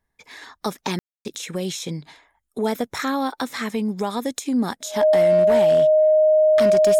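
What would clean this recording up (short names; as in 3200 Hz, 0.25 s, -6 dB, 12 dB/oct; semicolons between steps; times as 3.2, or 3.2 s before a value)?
clip repair -11.5 dBFS; notch 620 Hz, Q 30; room tone fill 0.99–1.25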